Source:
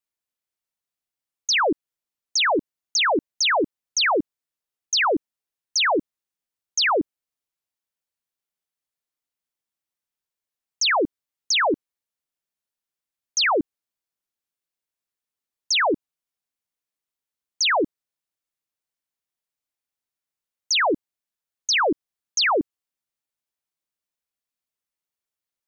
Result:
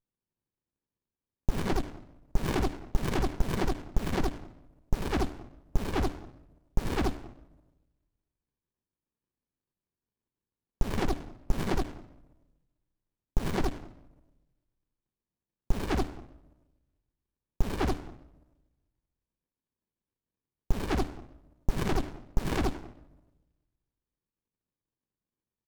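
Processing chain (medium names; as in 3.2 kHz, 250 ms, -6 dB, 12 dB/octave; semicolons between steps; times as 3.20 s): low-pass that closes with the level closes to 2.5 kHz, closed at -17.5 dBFS; treble shelf 2.2 kHz +9.5 dB; LFO notch square 1.6 Hz 660–1500 Hz; on a send: multi-tap echo 78/86/271 ms -5.5/-12.5/-19 dB; on the sum: Chebyshev shaper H 6 -7 dB, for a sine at -11.5 dBFS; simulated room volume 2600 m³, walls furnished, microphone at 1.1 m; sliding maximum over 65 samples; trim -6.5 dB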